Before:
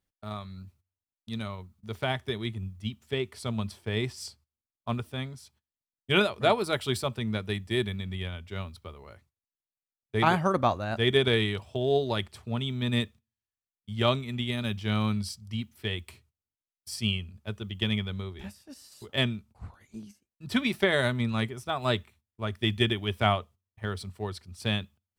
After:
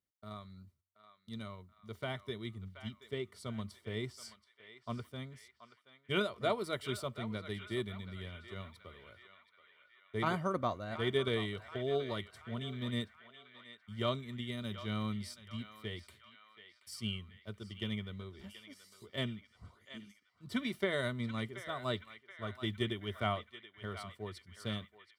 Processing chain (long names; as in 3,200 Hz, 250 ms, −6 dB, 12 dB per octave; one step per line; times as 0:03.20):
notch filter 2,600 Hz, Q 8.9
notch comb filter 830 Hz
on a send: feedback echo with a band-pass in the loop 728 ms, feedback 60%, band-pass 1,900 Hz, level −10 dB
on the sum: level −8.5 dB